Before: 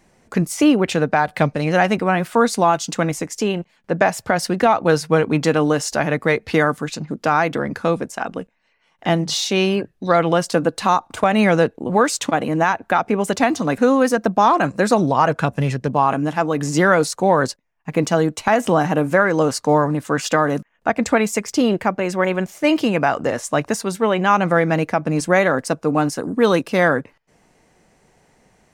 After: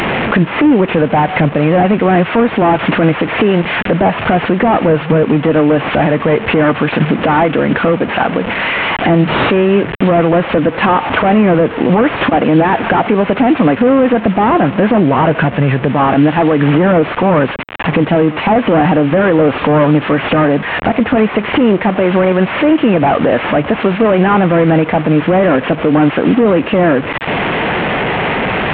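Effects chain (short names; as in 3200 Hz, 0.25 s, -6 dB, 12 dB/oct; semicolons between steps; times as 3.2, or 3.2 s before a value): delta modulation 16 kbps, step -30 dBFS; HPF 130 Hz 6 dB/oct; compressor 5:1, threshold -28 dBFS, peak gain reduction 14 dB; maximiser +23 dB; gain -1 dB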